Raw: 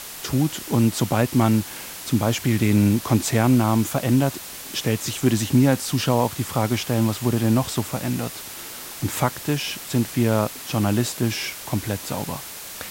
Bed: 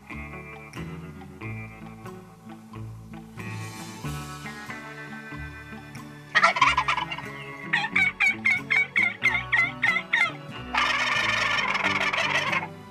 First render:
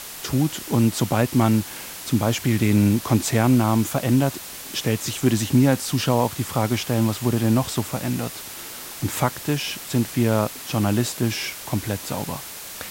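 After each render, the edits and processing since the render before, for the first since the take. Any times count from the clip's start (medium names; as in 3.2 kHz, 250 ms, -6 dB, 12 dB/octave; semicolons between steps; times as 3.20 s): no audible change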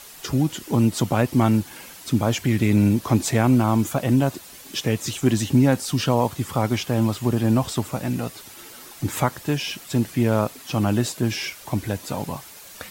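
noise reduction 9 dB, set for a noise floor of -37 dBFS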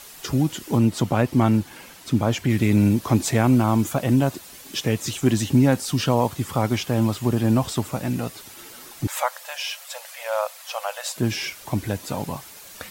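0.78–2.50 s: treble shelf 5.1 kHz -6 dB; 9.07–11.16 s: brick-wall FIR high-pass 490 Hz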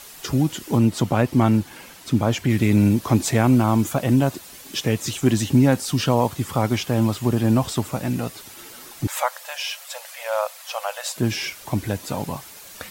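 trim +1 dB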